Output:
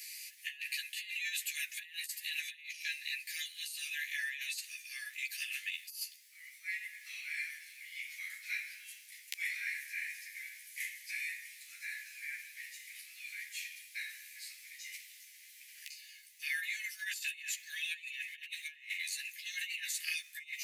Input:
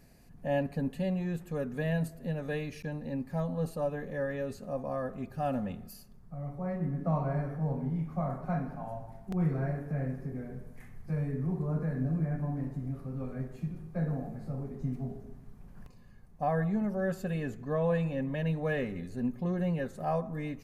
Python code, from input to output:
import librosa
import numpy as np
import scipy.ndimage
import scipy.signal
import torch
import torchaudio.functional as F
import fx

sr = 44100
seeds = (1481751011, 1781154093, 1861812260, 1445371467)

y = scipy.signal.sosfilt(scipy.signal.butter(12, 2000.0, 'highpass', fs=sr, output='sos'), x)
y = fx.over_compress(y, sr, threshold_db=-58.0, ratio=-0.5)
y = fx.doubler(y, sr, ms=13.0, db=-3.0)
y = y * 10.0 ** (17.5 / 20.0)